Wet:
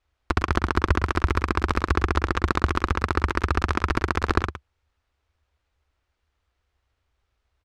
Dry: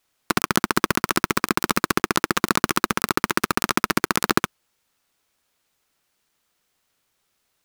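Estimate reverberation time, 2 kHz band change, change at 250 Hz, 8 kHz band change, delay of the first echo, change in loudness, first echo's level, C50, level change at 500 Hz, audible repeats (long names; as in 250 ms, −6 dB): no reverb audible, −3.5 dB, −3.5 dB, −16.0 dB, 111 ms, −2.5 dB, −11.0 dB, no reverb audible, −2.0 dB, 1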